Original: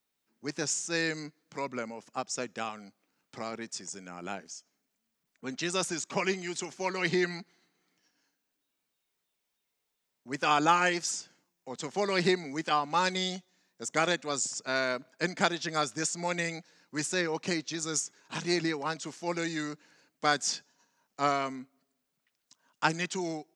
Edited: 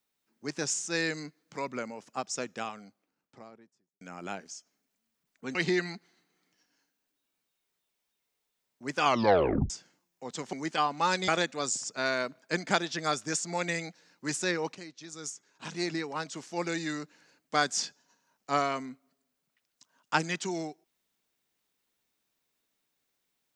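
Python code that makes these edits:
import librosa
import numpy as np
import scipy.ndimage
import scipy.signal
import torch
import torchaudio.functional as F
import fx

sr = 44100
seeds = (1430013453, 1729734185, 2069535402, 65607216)

y = fx.studio_fade_out(x, sr, start_s=2.44, length_s=1.57)
y = fx.edit(y, sr, fx.cut(start_s=5.55, length_s=1.45),
    fx.tape_stop(start_s=10.49, length_s=0.66),
    fx.cut(start_s=11.98, length_s=0.48),
    fx.cut(start_s=13.21, length_s=0.77),
    fx.fade_in_from(start_s=17.45, length_s=1.87, floor_db=-16.0), tone=tone)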